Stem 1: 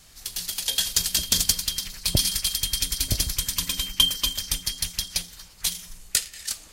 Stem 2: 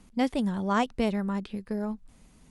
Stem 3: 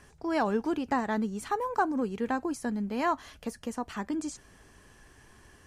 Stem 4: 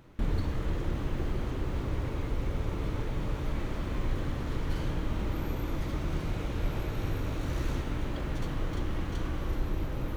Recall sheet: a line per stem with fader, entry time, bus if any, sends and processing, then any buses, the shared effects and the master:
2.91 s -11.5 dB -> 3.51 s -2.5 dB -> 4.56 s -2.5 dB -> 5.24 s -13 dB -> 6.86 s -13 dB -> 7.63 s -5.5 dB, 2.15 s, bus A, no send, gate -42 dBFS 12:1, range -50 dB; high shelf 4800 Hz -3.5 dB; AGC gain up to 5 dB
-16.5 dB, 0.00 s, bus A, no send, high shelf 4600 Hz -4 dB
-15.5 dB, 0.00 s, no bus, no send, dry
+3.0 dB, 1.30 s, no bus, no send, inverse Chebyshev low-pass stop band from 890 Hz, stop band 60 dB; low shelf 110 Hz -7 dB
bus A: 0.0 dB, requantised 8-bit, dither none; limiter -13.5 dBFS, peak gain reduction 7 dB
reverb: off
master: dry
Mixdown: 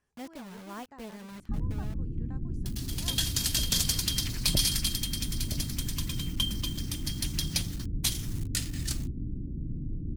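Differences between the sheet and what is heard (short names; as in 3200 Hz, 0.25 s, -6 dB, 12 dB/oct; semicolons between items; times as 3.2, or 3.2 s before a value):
stem 1: entry 2.15 s -> 2.40 s; stem 3 -15.5 dB -> -24.0 dB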